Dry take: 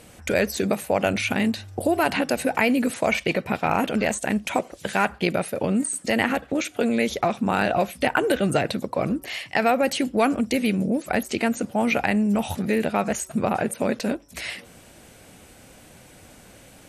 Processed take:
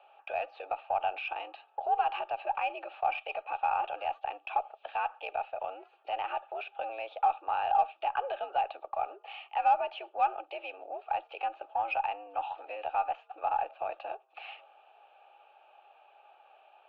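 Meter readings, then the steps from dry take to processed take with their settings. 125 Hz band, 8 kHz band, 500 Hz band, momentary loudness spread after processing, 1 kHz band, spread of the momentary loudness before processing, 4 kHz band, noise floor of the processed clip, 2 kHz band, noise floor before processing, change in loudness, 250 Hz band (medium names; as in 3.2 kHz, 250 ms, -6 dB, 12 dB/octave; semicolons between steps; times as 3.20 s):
under -35 dB, under -40 dB, -14.0 dB, 12 LU, -2.0 dB, 5 LU, -15.0 dB, -64 dBFS, -14.5 dB, -49 dBFS, -10.0 dB, under -35 dB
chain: in parallel at +1.5 dB: peak limiter -16.5 dBFS, peak gain reduction 10.5 dB; on the sum: vowel filter a; mistuned SSB +89 Hz 350–3500 Hz; Chebyshev shaper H 6 -40 dB, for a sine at -11 dBFS; trim -4.5 dB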